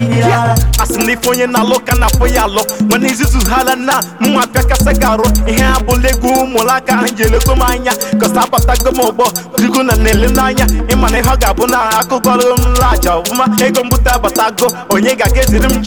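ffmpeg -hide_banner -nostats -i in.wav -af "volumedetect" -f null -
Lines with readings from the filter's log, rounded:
mean_volume: -10.3 dB
max_volume: -3.3 dB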